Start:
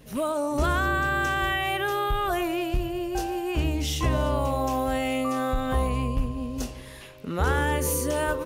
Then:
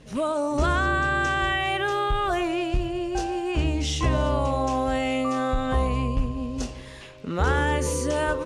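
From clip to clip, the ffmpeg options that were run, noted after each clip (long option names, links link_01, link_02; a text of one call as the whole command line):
ffmpeg -i in.wav -af "lowpass=frequency=8400:width=0.5412,lowpass=frequency=8400:width=1.3066,volume=1.5dB" out.wav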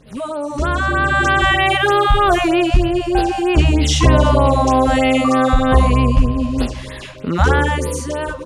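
ffmpeg -i in.wav -af "dynaudnorm=framelen=120:gausssize=17:maxgain=12dB,afftfilt=real='re*(1-between(b*sr/1024,350*pow(7300/350,0.5+0.5*sin(2*PI*3.2*pts/sr))/1.41,350*pow(7300/350,0.5+0.5*sin(2*PI*3.2*pts/sr))*1.41))':imag='im*(1-between(b*sr/1024,350*pow(7300/350,0.5+0.5*sin(2*PI*3.2*pts/sr))/1.41,350*pow(7300/350,0.5+0.5*sin(2*PI*3.2*pts/sr))*1.41))':win_size=1024:overlap=0.75,volume=1.5dB" out.wav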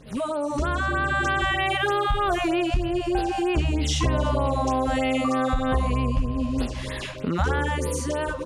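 ffmpeg -i in.wav -af "acompressor=threshold=-25dB:ratio=2.5" out.wav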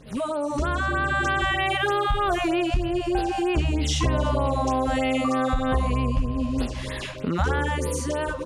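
ffmpeg -i in.wav -af anull out.wav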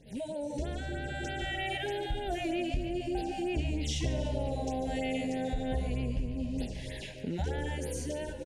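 ffmpeg -i in.wav -filter_complex "[0:a]asuperstop=centerf=1200:order=4:qfactor=1.2,asplit=6[link_01][link_02][link_03][link_04][link_05][link_06];[link_02]adelay=145,afreqshift=-79,volume=-12.5dB[link_07];[link_03]adelay=290,afreqshift=-158,volume=-18.7dB[link_08];[link_04]adelay=435,afreqshift=-237,volume=-24.9dB[link_09];[link_05]adelay=580,afreqshift=-316,volume=-31.1dB[link_10];[link_06]adelay=725,afreqshift=-395,volume=-37.3dB[link_11];[link_01][link_07][link_08][link_09][link_10][link_11]amix=inputs=6:normalize=0,volume=-9dB" out.wav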